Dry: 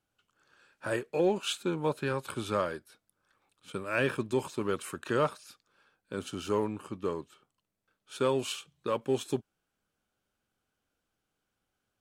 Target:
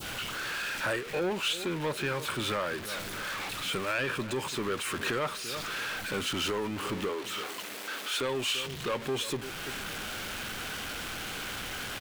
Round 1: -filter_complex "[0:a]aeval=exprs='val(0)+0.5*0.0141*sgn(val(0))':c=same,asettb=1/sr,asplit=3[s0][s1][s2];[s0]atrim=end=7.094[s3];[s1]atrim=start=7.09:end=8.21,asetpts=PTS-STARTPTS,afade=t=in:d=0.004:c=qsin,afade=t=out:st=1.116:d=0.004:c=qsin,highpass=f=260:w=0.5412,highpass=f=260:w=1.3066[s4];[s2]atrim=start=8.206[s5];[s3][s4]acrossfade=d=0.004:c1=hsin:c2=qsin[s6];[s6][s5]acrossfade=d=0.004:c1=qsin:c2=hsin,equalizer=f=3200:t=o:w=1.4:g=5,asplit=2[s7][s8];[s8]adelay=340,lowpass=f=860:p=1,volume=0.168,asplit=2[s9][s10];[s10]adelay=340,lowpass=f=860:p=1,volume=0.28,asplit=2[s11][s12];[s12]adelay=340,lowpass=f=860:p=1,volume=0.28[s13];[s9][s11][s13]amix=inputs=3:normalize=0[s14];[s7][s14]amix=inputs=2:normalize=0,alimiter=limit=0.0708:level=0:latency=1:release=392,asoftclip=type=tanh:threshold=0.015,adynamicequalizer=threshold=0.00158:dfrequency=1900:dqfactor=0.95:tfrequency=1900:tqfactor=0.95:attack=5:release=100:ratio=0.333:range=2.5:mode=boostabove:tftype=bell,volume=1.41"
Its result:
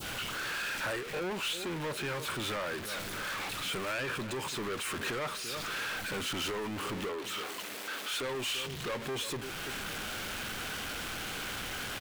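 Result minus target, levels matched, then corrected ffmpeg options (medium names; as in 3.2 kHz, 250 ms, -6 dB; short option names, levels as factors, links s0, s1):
saturation: distortion +8 dB
-filter_complex "[0:a]aeval=exprs='val(0)+0.5*0.0141*sgn(val(0))':c=same,asettb=1/sr,asplit=3[s0][s1][s2];[s0]atrim=end=7.094[s3];[s1]atrim=start=7.09:end=8.21,asetpts=PTS-STARTPTS,afade=t=in:d=0.004:c=qsin,afade=t=out:st=1.116:d=0.004:c=qsin,highpass=f=260:w=0.5412,highpass=f=260:w=1.3066[s4];[s2]atrim=start=8.206[s5];[s3][s4]acrossfade=d=0.004:c1=hsin:c2=qsin[s6];[s6][s5]acrossfade=d=0.004:c1=qsin:c2=hsin,equalizer=f=3200:t=o:w=1.4:g=5,asplit=2[s7][s8];[s8]adelay=340,lowpass=f=860:p=1,volume=0.168,asplit=2[s9][s10];[s10]adelay=340,lowpass=f=860:p=1,volume=0.28,asplit=2[s11][s12];[s12]adelay=340,lowpass=f=860:p=1,volume=0.28[s13];[s9][s11][s13]amix=inputs=3:normalize=0[s14];[s7][s14]amix=inputs=2:normalize=0,alimiter=limit=0.0708:level=0:latency=1:release=392,asoftclip=type=tanh:threshold=0.0376,adynamicequalizer=threshold=0.00158:dfrequency=1900:dqfactor=0.95:tfrequency=1900:tqfactor=0.95:attack=5:release=100:ratio=0.333:range=2.5:mode=boostabove:tftype=bell,volume=1.41"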